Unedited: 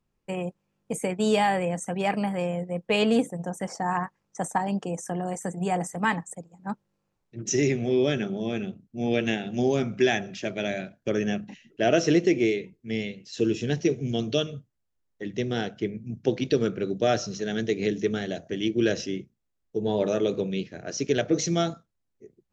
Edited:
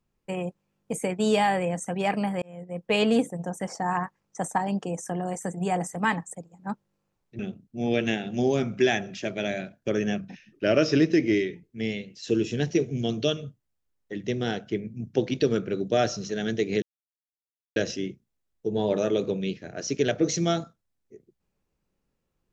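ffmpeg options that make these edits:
ffmpeg -i in.wav -filter_complex "[0:a]asplit=7[link_01][link_02][link_03][link_04][link_05][link_06][link_07];[link_01]atrim=end=2.42,asetpts=PTS-STARTPTS,afade=type=out:start_time=2.416:duration=0.004:curve=hsin[link_08];[link_02]atrim=start=2.42:end=7.392,asetpts=PTS-STARTPTS,afade=type=in:duration=0.5[link_09];[link_03]atrim=start=8.588:end=11.394[link_10];[link_04]atrim=start=11.39:end=12.73,asetpts=PTS-STARTPTS,asetrate=41013,aresample=44100[link_11];[link_05]atrim=start=12.726:end=17.92,asetpts=PTS-STARTPTS,afade=type=out:start_time=5.19:duration=0.004:curve=hsin[link_12];[link_06]atrim=start=17.92:end=18.86,asetpts=PTS-STARTPTS,volume=0[link_13];[link_07]atrim=start=18.86,asetpts=PTS-STARTPTS,afade=type=in:duration=0.004:curve=hsin[link_14];[link_08][link_09]concat=n=2:v=0:a=1[link_15];[link_15][link_10]acrossfade=duration=0.004:curve1=hsin:curve2=hsin[link_16];[link_16][link_11]acrossfade=duration=0.004:curve1=hsin:curve2=hsin[link_17];[link_12][link_13][link_14]concat=n=3:v=0:a=1[link_18];[link_17][link_18]acrossfade=duration=0.004:curve1=hsin:curve2=hsin" out.wav

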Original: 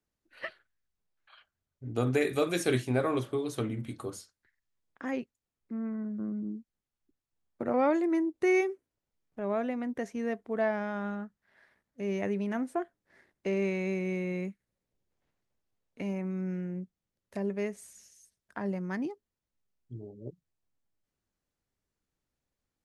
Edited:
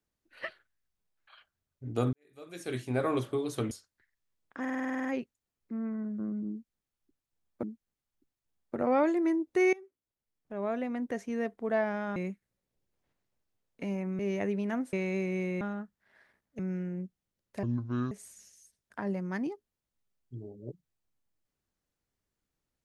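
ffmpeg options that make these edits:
ffmpeg -i in.wav -filter_complex "[0:a]asplit=21[link_01][link_02][link_03][link_04][link_05][link_06][link_07][link_08][link_09][link_10][link_11][link_12][link_13][link_14][link_15][link_16][link_17][link_18][link_19][link_20][link_21];[link_01]atrim=end=2.13,asetpts=PTS-STARTPTS,afade=type=out:start_time=2.126:duration=0.004:curve=hsin[link_22];[link_02]atrim=start=2.13:end=3.712,asetpts=PTS-STARTPTS,afade=type=in:duration=0.95:curve=qua[link_23];[link_03]atrim=start=4.158:end=5.102[link_24];[link_04]atrim=start=5.048:end=5.102[link_25];[link_05]atrim=start=5.048:end=5.102[link_26];[link_06]atrim=start=5.048:end=5.102[link_27];[link_07]atrim=start=5.048:end=5.102[link_28];[link_08]atrim=start=5.048:end=5.102[link_29];[link_09]atrim=start=5.048:end=5.102[link_30];[link_10]atrim=start=5.048:end=5.102[link_31];[link_11]atrim=start=5.048:end=5.102[link_32];[link_12]atrim=start=5.048:end=7.632[link_33];[link_13]atrim=start=6.498:end=8.6,asetpts=PTS-STARTPTS,afade=type=out:start_time=2.098:duration=0.004:curve=hsin:silence=0.0841395[link_34];[link_14]atrim=start=8.6:end=11.032,asetpts=PTS-STARTPTS,afade=type=in:duration=1.23:silence=0.0841395[link_35];[link_15]atrim=start=14.338:end=16.372[link_36];[link_16]atrim=start=12.008:end=12.752[link_37];[link_17]atrim=start=13.658:end=14.342[link_38];[link_18]atrim=start=11.028:end=12.012[link_39];[link_19]atrim=start=16.368:end=17.414[link_40];[link_20]atrim=start=17.41:end=17.7,asetpts=PTS-STARTPTS,asetrate=26460,aresample=44100[link_41];[link_21]atrim=start=17.696[link_42];[link_22][link_23]concat=n=2:v=0:a=1[link_43];[link_43][link_24]acrossfade=duration=0.004:curve1=hsin:curve2=hsin[link_44];[link_44][link_25]acrossfade=duration=0.004:curve1=hsin:curve2=hsin[link_45];[link_45][link_26]acrossfade=duration=0.004:curve1=hsin:curve2=hsin[link_46];[link_46][link_27]acrossfade=duration=0.004:curve1=hsin:curve2=hsin[link_47];[link_47][link_28]acrossfade=duration=0.004:curve1=hsin:curve2=hsin[link_48];[link_48][link_29]acrossfade=duration=0.004:curve1=hsin:curve2=hsin[link_49];[link_49][link_30]acrossfade=duration=0.004:curve1=hsin:curve2=hsin[link_50];[link_50][link_31]acrossfade=duration=0.004:curve1=hsin:curve2=hsin[link_51];[link_51][link_32]acrossfade=duration=0.004:curve1=hsin:curve2=hsin[link_52];[link_52][link_33]acrossfade=duration=0.004:curve1=hsin:curve2=hsin[link_53];[link_34][link_35]concat=n=2:v=0:a=1[link_54];[link_53][link_54]acrossfade=duration=0.004:curve1=hsin:curve2=hsin[link_55];[link_55][link_36]acrossfade=duration=0.004:curve1=hsin:curve2=hsin[link_56];[link_56][link_37]acrossfade=duration=0.004:curve1=hsin:curve2=hsin[link_57];[link_57][link_38]acrossfade=duration=0.004:curve1=hsin:curve2=hsin[link_58];[link_58][link_39]acrossfade=duration=0.004:curve1=hsin:curve2=hsin[link_59];[link_59][link_40]acrossfade=duration=0.004:curve1=hsin:curve2=hsin[link_60];[link_60][link_41]acrossfade=duration=0.004:curve1=hsin:curve2=hsin[link_61];[link_61][link_42]acrossfade=duration=0.004:curve1=hsin:curve2=hsin" out.wav

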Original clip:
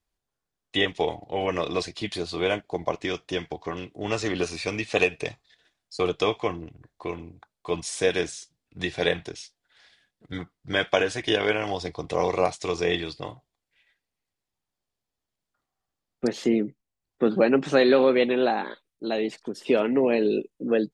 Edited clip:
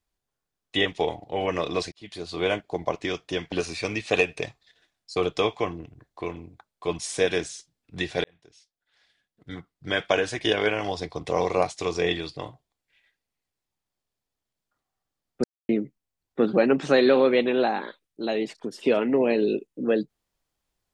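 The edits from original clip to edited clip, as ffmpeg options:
ffmpeg -i in.wav -filter_complex "[0:a]asplit=6[link_01][link_02][link_03][link_04][link_05][link_06];[link_01]atrim=end=1.92,asetpts=PTS-STARTPTS,afade=type=out:start_time=1.916:duration=0.004:curve=hsin[link_07];[link_02]atrim=start=1.92:end=3.522,asetpts=PTS-STARTPTS,afade=type=in:duration=0.52[link_08];[link_03]atrim=start=4.348:end=9.07,asetpts=PTS-STARTPTS,afade=type=out:start_time=4.718:duration=0.004:curve=hsin[link_09];[link_04]atrim=start=9.07:end=16.27,asetpts=PTS-STARTPTS,afade=type=in:duration=2.05,afade=type=out:start_time=7.196:duration=0.004:curve=hsin[link_10];[link_05]atrim=start=16.27:end=16.52,asetpts=PTS-STARTPTS,volume=0[link_11];[link_06]atrim=start=16.52,asetpts=PTS-STARTPTS,afade=type=in:duration=0.004:curve=hsin[link_12];[link_07][link_08]concat=n=2:v=0:a=1[link_13];[link_09][link_10][link_11][link_12]concat=n=4:v=0:a=1[link_14];[link_13][link_14]acrossfade=duration=0.004:curve1=hsin:curve2=hsin" out.wav

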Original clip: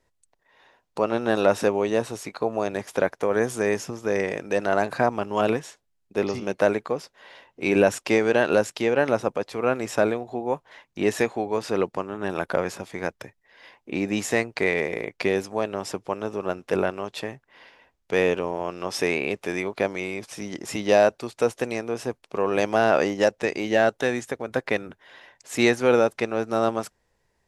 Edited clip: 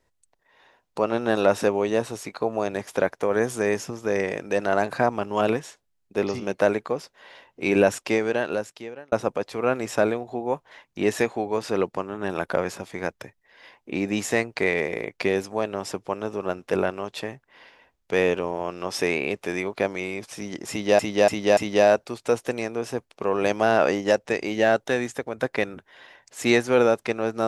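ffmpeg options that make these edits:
ffmpeg -i in.wav -filter_complex "[0:a]asplit=5[link_01][link_02][link_03][link_04][link_05];[link_01]atrim=end=9.12,asetpts=PTS-STARTPTS,afade=type=out:start_time=7.87:duration=1.25[link_06];[link_02]atrim=start=9.12:end=20.992,asetpts=PTS-STARTPTS,afade=type=in:duration=0.004:curve=hsin[link_07];[link_03]atrim=start=20.698:end=20.992[link_08];[link_04]atrim=start=20.698:end=20.992[link_09];[link_05]atrim=start=20.698[link_10];[link_06][link_07]concat=n=2:v=0:a=1[link_11];[link_11][link_08]acrossfade=duration=0.004:curve1=hsin:curve2=hsin[link_12];[link_12][link_09]acrossfade=duration=0.004:curve1=hsin:curve2=hsin[link_13];[link_13][link_10]acrossfade=duration=0.004:curve1=hsin:curve2=hsin" out.wav

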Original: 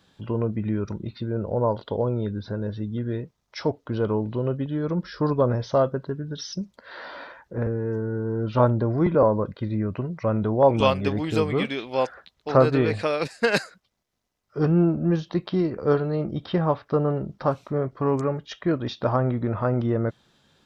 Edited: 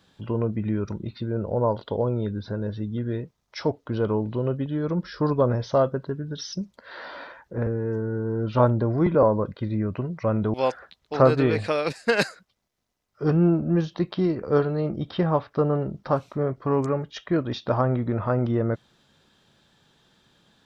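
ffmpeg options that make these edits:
ffmpeg -i in.wav -filter_complex "[0:a]asplit=2[link_01][link_02];[link_01]atrim=end=10.542[link_03];[link_02]atrim=start=11.888[link_04];[link_03][link_04]acrossfade=duration=0.004:curve1=hsin:curve2=hsin" out.wav

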